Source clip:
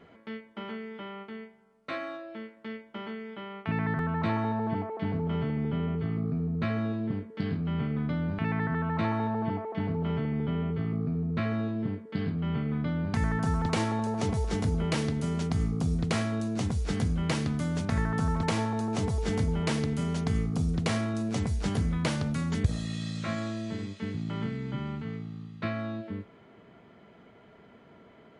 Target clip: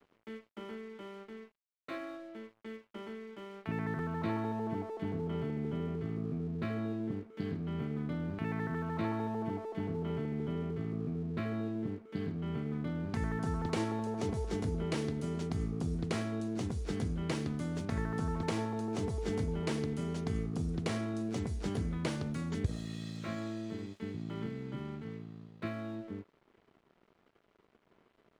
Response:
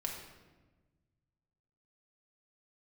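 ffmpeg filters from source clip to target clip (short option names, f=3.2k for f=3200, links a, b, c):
-af "equalizer=f=360:t=o:w=0.74:g=8,aeval=exprs='sgn(val(0))*max(abs(val(0))-0.00299,0)':c=same,volume=-7.5dB"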